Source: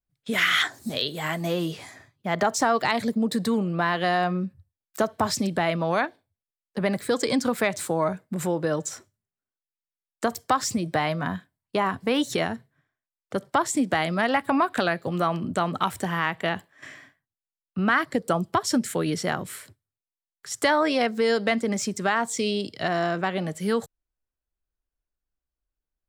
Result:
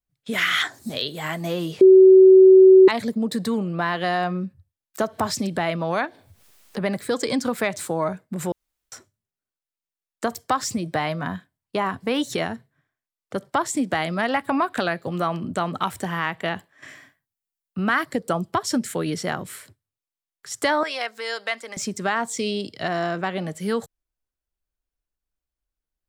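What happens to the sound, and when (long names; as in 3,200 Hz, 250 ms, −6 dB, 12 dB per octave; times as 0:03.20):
0:01.81–0:02.88: beep over 378 Hz −6.5 dBFS
0:05.03–0:06.83: upward compression, threshold −26 dBFS
0:08.52–0:08.92: fill with room tone
0:16.88–0:18.15: high-shelf EQ 8,900 Hz +9.5 dB
0:20.83–0:21.77: high-pass filter 850 Hz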